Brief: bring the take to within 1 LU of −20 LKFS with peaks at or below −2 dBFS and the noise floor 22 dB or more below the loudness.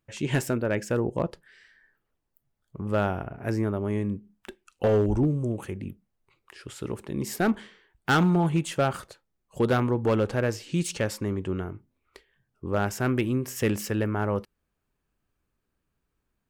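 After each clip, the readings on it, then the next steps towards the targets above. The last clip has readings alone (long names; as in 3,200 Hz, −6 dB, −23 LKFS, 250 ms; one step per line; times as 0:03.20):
share of clipped samples 0.6%; peaks flattened at −16.5 dBFS; integrated loudness −27.5 LKFS; sample peak −16.5 dBFS; target loudness −20.0 LKFS
→ clipped peaks rebuilt −16.5 dBFS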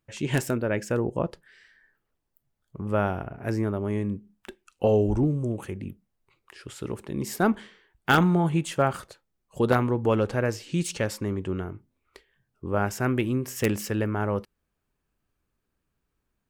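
share of clipped samples 0.0%; integrated loudness −27.0 LKFS; sample peak −7.5 dBFS; target loudness −20.0 LKFS
→ level +7 dB
brickwall limiter −2 dBFS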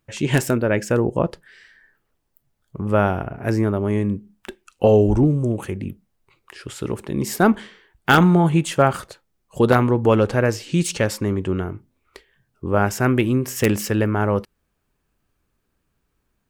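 integrated loudness −20.0 LKFS; sample peak −2.0 dBFS; background noise floor −72 dBFS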